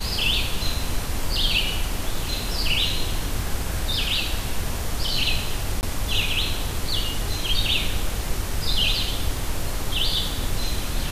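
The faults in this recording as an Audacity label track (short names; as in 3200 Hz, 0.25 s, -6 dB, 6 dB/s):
5.810000	5.830000	gap 19 ms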